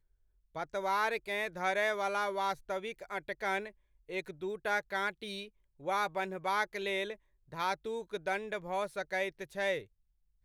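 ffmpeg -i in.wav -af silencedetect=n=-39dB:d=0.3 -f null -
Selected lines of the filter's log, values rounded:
silence_start: 0.00
silence_end: 0.56 | silence_duration: 0.56
silence_start: 3.69
silence_end: 4.10 | silence_duration: 0.41
silence_start: 5.45
silence_end: 5.86 | silence_duration: 0.41
silence_start: 7.13
silence_end: 7.53 | silence_duration: 0.40
silence_start: 9.81
silence_end: 10.44 | silence_duration: 0.63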